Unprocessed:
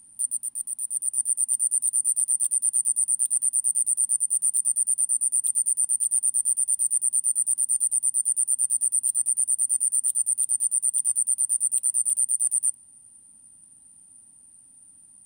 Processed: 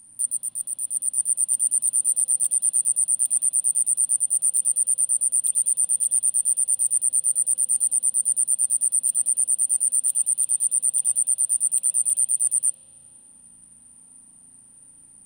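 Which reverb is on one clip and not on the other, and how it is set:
spring reverb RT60 3 s, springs 35 ms, chirp 60 ms, DRR −3 dB
level +2 dB

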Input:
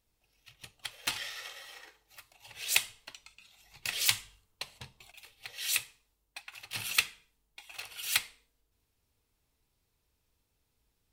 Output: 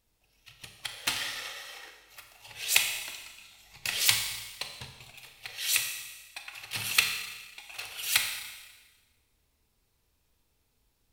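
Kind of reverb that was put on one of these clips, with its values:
four-comb reverb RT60 1.3 s, combs from 28 ms, DRR 4.5 dB
level +3 dB

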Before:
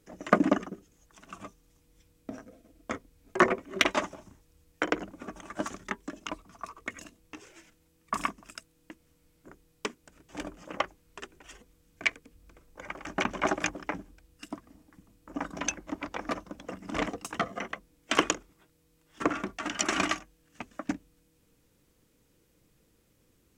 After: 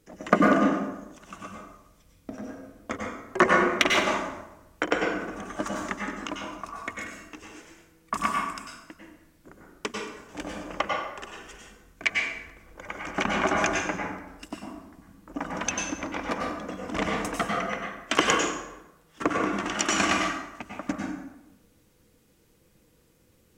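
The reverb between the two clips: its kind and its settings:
dense smooth reverb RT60 0.96 s, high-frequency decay 0.65×, pre-delay 85 ms, DRR −1.5 dB
level +1.5 dB

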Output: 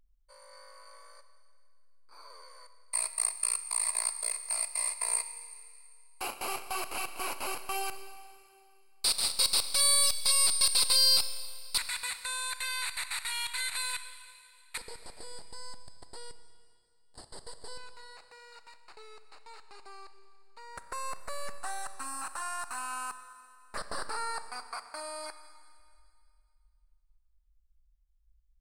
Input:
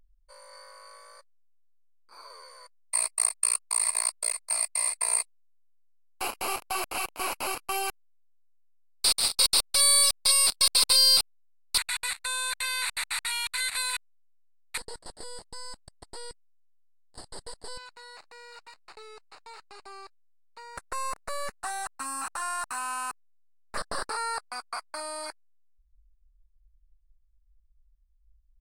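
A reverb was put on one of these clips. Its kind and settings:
four-comb reverb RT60 2.3 s, combs from 28 ms, DRR 10 dB
level −4.5 dB

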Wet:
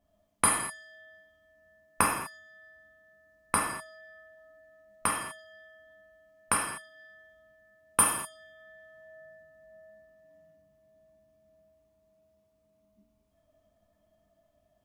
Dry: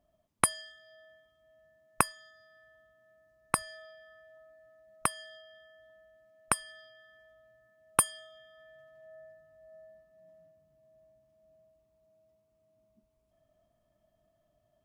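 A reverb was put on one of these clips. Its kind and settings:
reverb whose tail is shaped and stops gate 270 ms falling, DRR −4 dB
level −2 dB

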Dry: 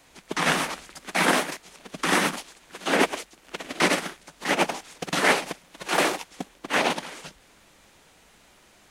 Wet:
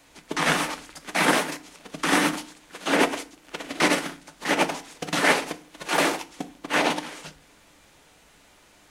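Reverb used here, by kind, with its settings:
feedback delay network reverb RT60 0.41 s, low-frequency decay 1.45×, high-frequency decay 0.7×, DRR 9.5 dB

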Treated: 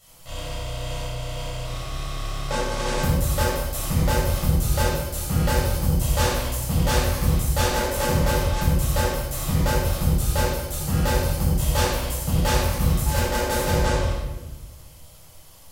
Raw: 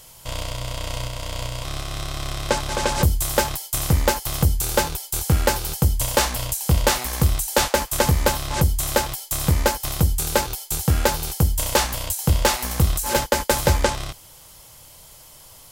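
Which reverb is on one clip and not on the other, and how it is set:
rectangular room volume 680 cubic metres, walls mixed, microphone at 6.6 metres
level −15.5 dB

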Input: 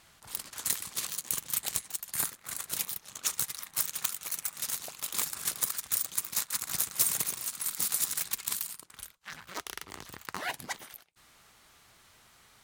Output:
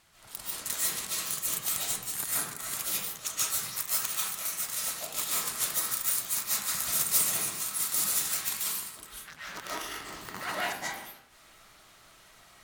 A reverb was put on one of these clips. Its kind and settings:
comb and all-pass reverb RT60 0.75 s, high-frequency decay 0.55×, pre-delay 105 ms, DRR −8.5 dB
level −4.5 dB

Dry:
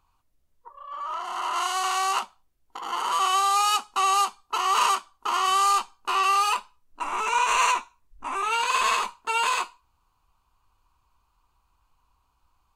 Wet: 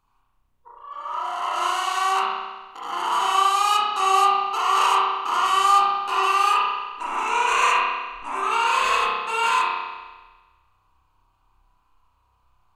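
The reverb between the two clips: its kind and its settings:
spring reverb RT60 1.3 s, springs 31 ms, chirp 35 ms, DRR −6 dB
level −3 dB

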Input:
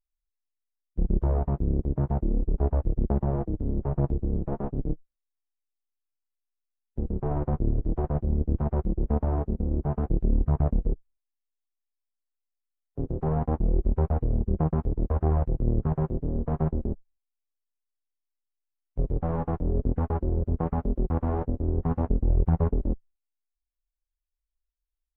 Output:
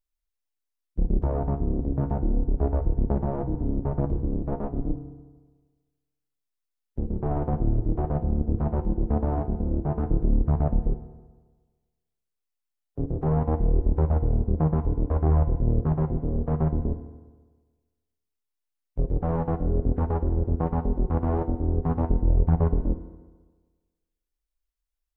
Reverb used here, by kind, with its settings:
feedback delay network reverb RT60 1.4 s, low-frequency decay 0.9×, high-frequency decay 0.75×, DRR 9 dB
level +1 dB

